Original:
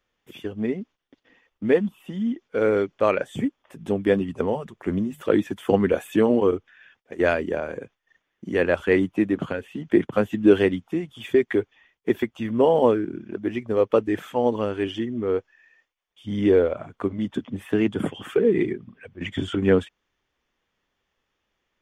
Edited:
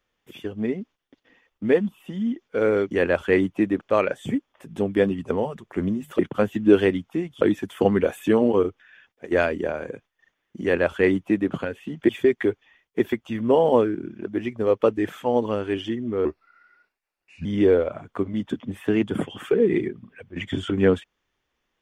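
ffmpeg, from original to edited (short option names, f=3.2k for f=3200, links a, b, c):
-filter_complex "[0:a]asplit=8[a][b][c][d][e][f][g][h];[a]atrim=end=2.912[i];[b]atrim=start=8.498:end=9.402[j];[c]atrim=start=2.908:end=5.292[k];[d]atrim=start=9.968:end=11.192[l];[e]atrim=start=5.288:end=9.972[m];[f]atrim=start=11.188:end=15.354[n];[g]atrim=start=15.35:end=16.3,asetpts=PTS-STARTPTS,asetrate=34839,aresample=44100[o];[h]atrim=start=16.296[p];[i][j]acrossfade=d=0.004:c1=hsin:c2=hsin[q];[q][k]acrossfade=d=0.004:c1=hsin:c2=hsin[r];[r][l]acrossfade=d=0.004:c1=hsin:c2=hsin[s];[s][m]acrossfade=d=0.004:c1=hsin:c2=hsin[t];[t][n]acrossfade=d=0.004:c1=hsin:c2=hsin[u];[u][o]acrossfade=d=0.004:c1=hsin:c2=hsin[v];[v][p]acrossfade=d=0.004:c1=hsin:c2=hsin"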